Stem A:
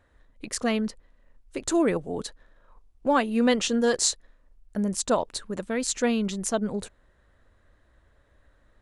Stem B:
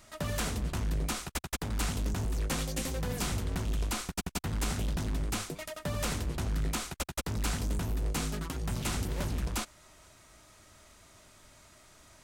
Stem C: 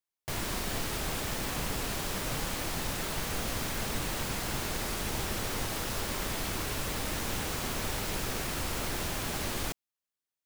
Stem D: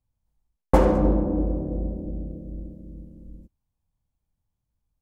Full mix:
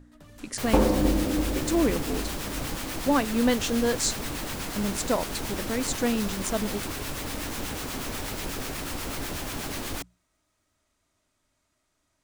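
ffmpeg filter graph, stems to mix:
-filter_complex "[0:a]aeval=exprs='val(0)+0.00631*(sin(2*PI*60*n/s)+sin(2*PI*2*60*n/s)/2+sin(2*PI*3*60*n/s)/3+sin(2*PI*4*60*n/s)/4+sin(2*PI*5*60*n/s)/5)':c=same,volume=-3dB[a];[1:a]volume=-17.5dB[b];[2:a]acrossover=split=940[c][d];[c]aeval=exprs='val(0)*(1-0.5/2+0.5/2*cos(2*PI*8.2*n/s))':c=same[e];[d]aeval=exprs='val(0)*(1-0.5/2-0.5/2*cos(2*PI*8.2*n/s))':c=same[f];[e][f]amix=inputs=2:normalize=0,adelay=300,volume=2.5dB[g];[3:a]volume=-4.5dB[h];[a][b][g][h]amix=inputs=4:normalize=0,equalizer=f=280:t=o:w=0.31:g=6,bandreject=f=60:t=h:w=6,bandreject=f=120:t=h:w=6,bandreject=f=180:t=h:w=6"

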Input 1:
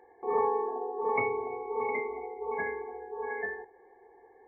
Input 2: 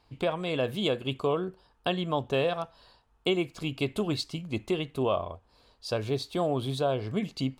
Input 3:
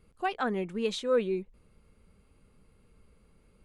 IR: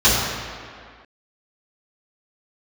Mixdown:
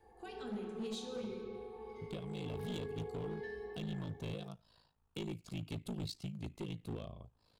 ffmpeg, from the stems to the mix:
-filter_complex "[0:a]acompressor=threshold=-43dB:ratio=2.5,asoftclip=type=tanh:threshold=-33.5dB,volume=-14.5dB,afade=t=in:st=2.18:d=0.42:silence=0.398107,asplit=2[a][b];[b]volume=-5dB[c];[1:a]equalizer=f=140:t=o:w=1.4:g=9,aeval=exprs='val(0)*sin(2*PI*27*n/s)':c=same,adelay=1900,volume=-10dB[d];[2:a]volume=-12.5dB,asplit=2[e][f];[f]volume=-23dB[g];[3:a]atrim=start_sample=2205[h];[c][g]amix=inputs=2:normalize=0[i];[i][h]afir=irnorm=-1:irlink=0[j];[a][d][e][j]amix=inputs=4:normalize=0,highshelf=f=4.8k:g=5,acrossover=split=380|3000[k][l][m];[l]acompressor=threshold=-53dB:ratio=6[n];[k][n][m]amix=inputs=3:normalize=0,asoftclip=type=hard:threshold=-36dB"

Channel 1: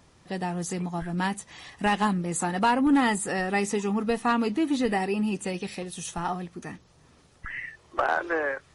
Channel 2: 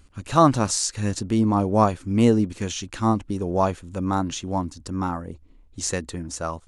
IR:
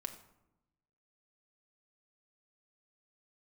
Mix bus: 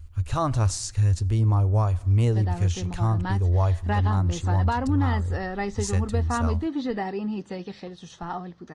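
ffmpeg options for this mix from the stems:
-filter_complex "[0:a]lowpass=f=4.9k:w=0.5412,lowpass=f=4.9k:w=1.3066,equalizer=f=2.5k:w=2.9:g=-10,adelay=2050,volume=-2.5dB[a];[1:a]lowshelf=f=130:t=q:w=3:g=14,acrusher=bits=11:mix=0:aa=0.000001,volume=-7.5dB,asplit=2[b][c];[c]volume=-11dB[d];[2:a]atrim=start_sample=2205[e];[d][e]afir=irnorm=-1:irlink=0[f];[a][b][f]amix=inputs=3:normalize=0,alimiter=limit=-14.5dB:level=0:latency=1:release=217"

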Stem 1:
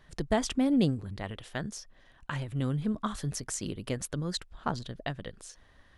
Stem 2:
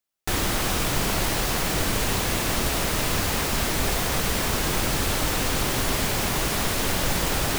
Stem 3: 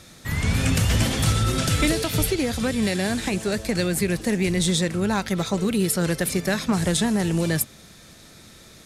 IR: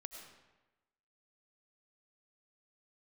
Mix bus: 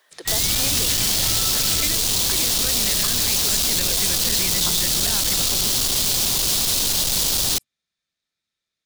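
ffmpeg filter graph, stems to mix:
-filter_complex "[0:a]highpass=f=410:w=0.5412,highpass=f=410:w=1.3066,highshelf=f=4.8k:g=10,volume=1dB,asplit=2[a][b];[1:a]asoftclip=type=tanh:threshold=-28dB,highshelf=f=2.8k:t=q:w=1.5:g=11.5,volume=2.5dB[c];[2:a]equalizer=f=3.2k:w=0.34:g=15,volume=-14dB[d];[b]apad=whole_len=390631[e];[d][e]sidechaingate=range=-33dB:threshold=-57dB:ratio=16:detection=peak[f];[a][c][f]amix=inputs=3:normalize=0,acrossover=split=270|3000[g][h][i];[h]acompressor=threshold=-29dB:ratio=6[j];[g][j][i]amix=inputs=3:normalize=0"

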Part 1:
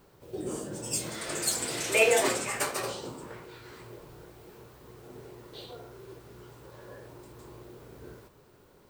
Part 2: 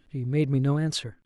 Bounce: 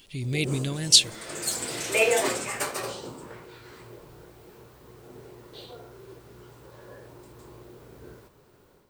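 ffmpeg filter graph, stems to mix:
-filter_complex "[0:a]volume=-6.5dB[a];[1:a]alimiter=level_in=0.5dB:limit=-24dB:level=0:latency=1:release=392,volume=-0.5dB,aexciter=amount=11.2:drive=4.1:freq=2.2k,volume=-3dB[b];[a][b]amix=inputs=2:normalize=0,dynaudnorm=f=190:g=3:m=7dB"

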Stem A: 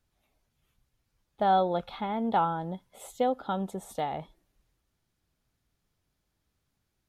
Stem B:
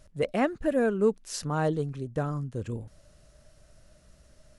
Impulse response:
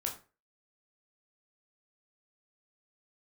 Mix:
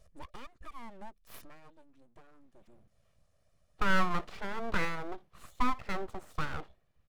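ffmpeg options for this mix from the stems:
-filter_complex "[0:a]bass=f=250:g=0,treble=f=4k:g=-13,adelay=2400,volume=-2.5dB,asplit=2[a][b];[b]volume=-22dB[c];[1:a]acompressor=threshold=-38dB:ratio=2.5,volume=-9.5dB,afade=t=out:st=1.4:d=0.21:silence=0.298538[d];[c]aecho=0:1:60|120|180:1|0.17|0.0289[e];[a][d][e]amix=inputs=3:normalize=0,aecho=1:1:1.7:0.85,aeval=exprs='abs(val(0))':c=same"

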